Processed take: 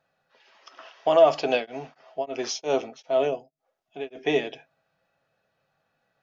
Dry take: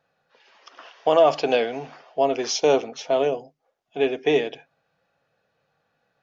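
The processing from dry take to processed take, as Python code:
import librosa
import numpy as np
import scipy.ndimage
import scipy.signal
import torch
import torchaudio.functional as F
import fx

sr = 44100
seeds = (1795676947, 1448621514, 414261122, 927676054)

y = fx.notch(x, sr, hz=470.0, q=12.0)
y = fx.comb_fb(y, sr, f0_hz=650.0, decay_s=0.16, harmonics='all', damping=0.0, mix_pct=60)
y = fx.tremolo_abs(y, sr, hz=fx.line((1.55, 3.9), (4.15, 1.5)), at=(1.55, 4.15), fade=0.02)
y = F.gain(torch.from_numpy(y), 5.0).numpy()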